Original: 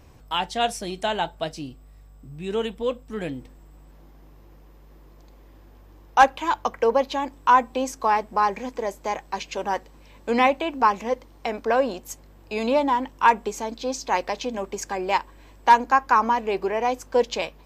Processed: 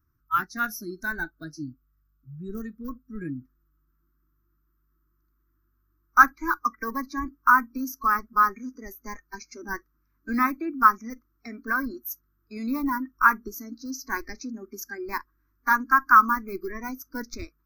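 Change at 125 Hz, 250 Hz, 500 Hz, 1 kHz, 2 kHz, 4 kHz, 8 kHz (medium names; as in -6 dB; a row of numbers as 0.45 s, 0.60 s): no reading, -1.0 dB, -16.5 dB, -3.0 dB, +3.5 dB, under -10 dB, -4.5 dB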